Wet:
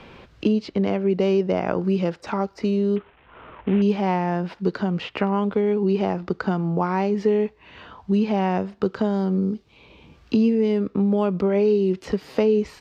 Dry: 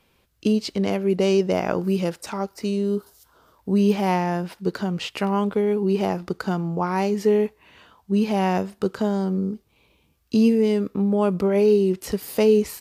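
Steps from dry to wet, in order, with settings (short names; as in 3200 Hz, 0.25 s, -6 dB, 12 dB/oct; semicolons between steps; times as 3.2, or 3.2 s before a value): 2.96–3.82 CVSD 16 kbps; air absorption 170 m; three-band squash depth 70%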